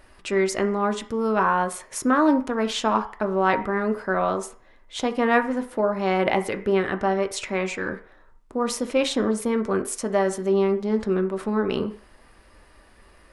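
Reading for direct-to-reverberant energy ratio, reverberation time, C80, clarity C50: 6.0 dB, 0.45 s, 17.0 dB, 13.5 dB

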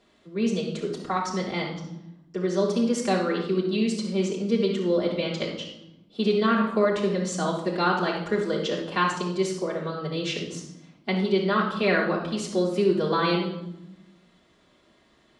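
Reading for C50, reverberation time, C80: 3.5 dB, 0.90 s, 7.5 dB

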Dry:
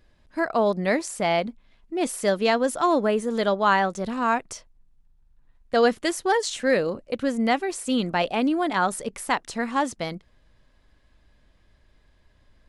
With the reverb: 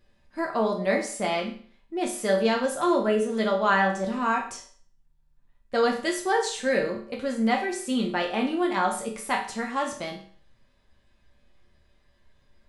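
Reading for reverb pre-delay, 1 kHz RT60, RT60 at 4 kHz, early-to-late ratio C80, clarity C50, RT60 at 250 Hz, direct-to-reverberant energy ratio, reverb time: 5 ms, 0.45 s, 0.45 s, 12.0 dB, 8.0 dB, 0.45 s, -1.0 dB, 0.50 s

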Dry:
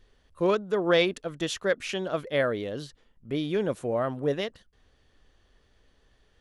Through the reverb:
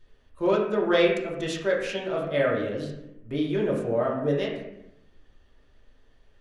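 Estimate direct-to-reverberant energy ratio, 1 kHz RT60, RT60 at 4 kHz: -3.5 dB, 0.70 s, 0.60 s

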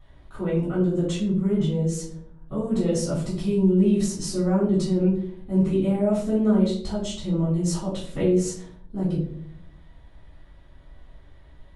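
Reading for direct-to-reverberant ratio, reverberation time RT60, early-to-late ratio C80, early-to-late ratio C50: -9.0 dB, 0.65 s, 9.5 dB, 5.0 dB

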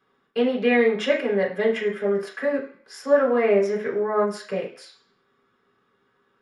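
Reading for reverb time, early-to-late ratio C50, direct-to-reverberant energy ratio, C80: 0.45 s, 8.5 dB, -4.5 dB, 13.0 dB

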